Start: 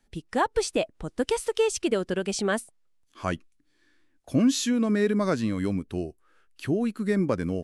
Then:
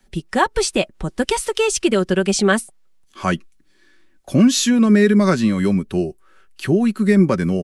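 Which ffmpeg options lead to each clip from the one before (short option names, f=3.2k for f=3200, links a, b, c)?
-filter_complex "[0:a]aecho=1:1:5.3:0.48,acrossover=split=390|810|1800[a][b][c][d];[b]alimiter=level_in=4.5dB:limit=-24dB:level=0:latency=1:release=291,volume=-4.5dB[e];[a][e][c][d]amix=inputs=4:normalize=0,volume=9dB"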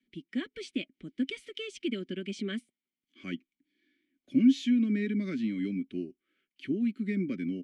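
-filter_complex "[0:a]asplit=3[a][b][c];[a]bandpass=f=270:t=q:w=8,volume=0dB[d];[b]bandpass=f=2.29k:t=q:w=8,volume=-6dB[e];[c]bandpass=f=3.01k:t=q:w=8,volume=-9dB[f];[d][e][f]amix=inputs=3:normalize=0,volume=-3.5dB"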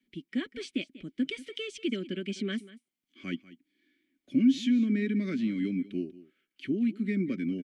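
-filter_complex "[0:a]asplit=2[a][b];[b]alimiter=limit=-23.5dB:level=0:latency=1:release=98,volume=-2.5dB[c];[a][c]amix=inputs=2:normalize=0,aecho=1:1:191:0.126,volume=-3dB"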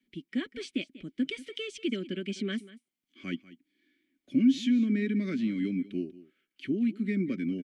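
-af anull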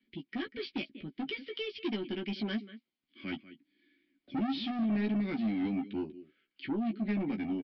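-filter_complex "[0:a]aresample=11025,asoftclip=type=tanh:threshold=-30dB,aresample=44100,asplit=2[a][b];[b]adelay=14,volume=-5dB[c];[a][c]amix=inputs=2:normalize=0"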